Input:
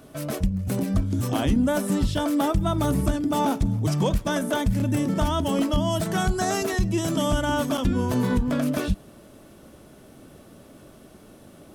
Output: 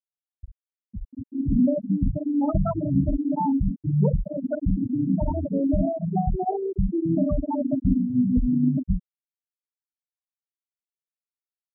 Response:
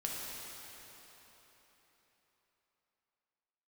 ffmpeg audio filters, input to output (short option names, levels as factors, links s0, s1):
-filter_complex "[1:a]atrim=start_sample=2205,atrim=end_sample=3528[s0];[0:a][s0]afir=irnorm=-1:irlink=0,dynaudnorm=f=860:g=3:m=3.98,afftfilt=real='re*gte(hypot(re,im),1)':imag='im*gte(hypot(re,im),1)':win_size=1024:overlap=0.75,volume=0.473"